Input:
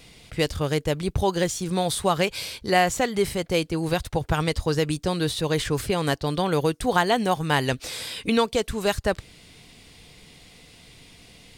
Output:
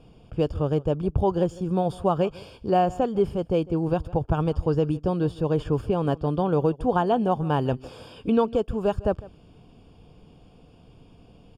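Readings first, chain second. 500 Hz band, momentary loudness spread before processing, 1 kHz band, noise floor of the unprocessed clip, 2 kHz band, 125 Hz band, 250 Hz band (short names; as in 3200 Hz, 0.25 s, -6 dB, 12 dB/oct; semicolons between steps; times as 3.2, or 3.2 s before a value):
+0.5 dB, 5 LU, -1.0 dB, -51 dBFS, -13.5 dB, +1.5 dB, +1.5 dB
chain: running mean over 22 samples; echo 0.153 s -20.5 dB; gain +1.5 dB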